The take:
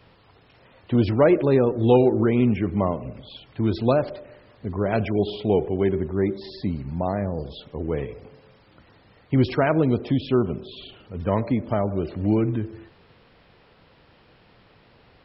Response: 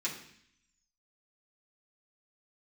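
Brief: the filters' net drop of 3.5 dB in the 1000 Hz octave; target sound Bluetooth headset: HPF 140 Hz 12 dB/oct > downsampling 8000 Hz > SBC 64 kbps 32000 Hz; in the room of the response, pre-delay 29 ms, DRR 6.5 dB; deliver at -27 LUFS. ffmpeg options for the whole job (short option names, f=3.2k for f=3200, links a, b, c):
-filter_complex "[0:a]equalizer=f=1k:t=o:g=-5,asplit=2[a][b];[1:a]atrim=start_sample=2205,adelay=29[c];[b][c]afir=irnorm=-1:irlink=0,volume=-10.5dB[d];[a][d]amix=inputs=2:normalize=0,highpass=140,aresample=8000,aresample=44100,volume=-3.5dB" -ar 32000 -c:a sbc -b:a 64k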